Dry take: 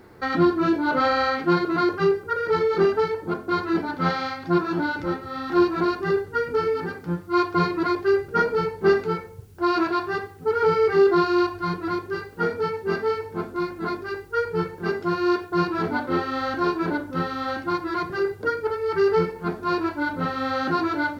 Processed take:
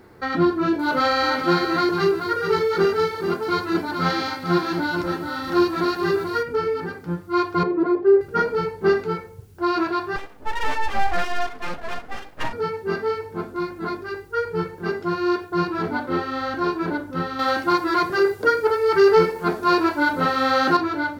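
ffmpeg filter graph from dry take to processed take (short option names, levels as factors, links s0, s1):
-filter_complex "[0:a]asettb=1/sr,asplit=3[s0][s1][s2];[s0]atrim=end=0.794[s3];[s1]atrim=start=0.79:end=6.43,asetpts=PTS-STARTPTS,afade=t=in:d=0.004:c=qsin,afade=t=out:st=5.636:d=0.004:c=qsin,highshelf=f=4100:g=11.5,aecho=1:1:433:0.447,atrim=end_sample=248724[s4];[s2]atrim=start=6.426[s5];[s3][s4]acrossfade=d=0.004:c1=hsin:c2=qsin[s6];[s6][s5]acrossfade=d=0.004:c1=qsin:c2=hsin,asettb=1/sr,asplit=3[s7][s8][s9];[s7]atrim=end=7.634[s10];[s8]atrim=start=7.63:end=8.21,asetpts=PTS-STARTPTS,afade=t=in:d=0.004:c=qsin,afade=t=out:st=0.576:d=0.004:c=qsin,acontrast=54,bandpass=f=410:t=q:w=1.3[s11];[s9]atrim=start=8.206[s12];[s10][s11]acrossfade=d=0.004:c1=hsin:c2=qsin[s13];[s13][s12]acrossfade=d=0.004:c1=qsin:c2=hsin,asettb=1/sr,asplit=3[s14][s15][s16];[s14]atrim=end=10.164[s17];[s15]atrim=start=10.16:end=12.53,asetpts=PTS-STARTPTS,afade=t=in:d=0.004:c=qsin,afade=t=out:st=2.366:d=0.004:c=qsin,highshelf=f=4100:g=-7,aeval=exprs='abs(val(0))':c=same[s18];[s16]atrim=start=12.526[s19];[s17][s18]acrossfade=d=0.004:c1=hsin:c2=qsin[s20];[s20][s19]acrossfade=d=0.004:c1=qsin:c2=hsin,asettb=1/sr,asplit=3[s21][s22][s23];[s21]atrim=end=17.394[s24];[s22]atrim=start=17.39:end=20.77,asetpts=PTS-STARTPTS,afade=t=in:d=0.004:c=qsin,afade=t=out:st=3.376:d=0.004:c=qsin,bass=f=250:g=-8,treble=f=4000:g=4,acontrast=81[s25];[s23]atrim=start=20.766[s26];[s24][s25]acrossfade=d=0.004:c1=hsin:c2=qsin[s27];[s27][s26]acrossfade=d=0.004:c1=qsin:c2=hsin"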